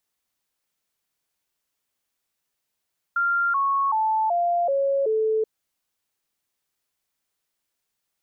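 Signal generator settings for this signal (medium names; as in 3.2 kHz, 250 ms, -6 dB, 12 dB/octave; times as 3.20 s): stepped sine 1.39 kHz down, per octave 3, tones 6, 0.38 s, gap 0.00 s -19 dBFS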